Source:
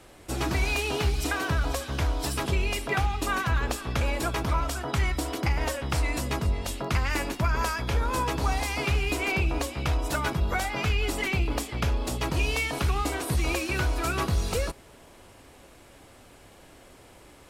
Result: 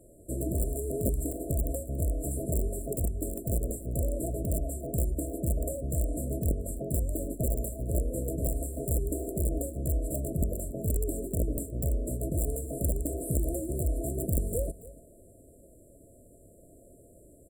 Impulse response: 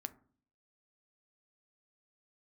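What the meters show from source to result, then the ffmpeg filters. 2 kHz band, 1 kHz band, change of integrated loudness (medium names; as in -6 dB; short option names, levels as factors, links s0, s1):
under -40 dB, under -15 dB, -4.0 dB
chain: -af "aeval=exprs='(mod(7.5*val(0)+1,2)-1)/7.5':c=same,aecho=1:1:283:0.133,afftfilt=real='re*(1-between(b*sr/4096,690,7200))':imag='im*(1-between(b*sr/4096,690,7200))':win_size=4096:overlap=0.75,volume=0.794"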